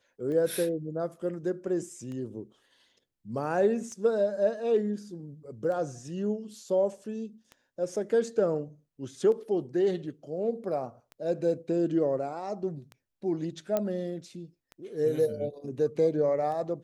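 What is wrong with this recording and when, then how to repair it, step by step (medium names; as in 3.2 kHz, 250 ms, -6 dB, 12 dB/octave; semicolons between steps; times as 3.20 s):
tick 33 1/3 rpm -29 dBFS
13.77 s: pop -15 dBFS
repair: de-click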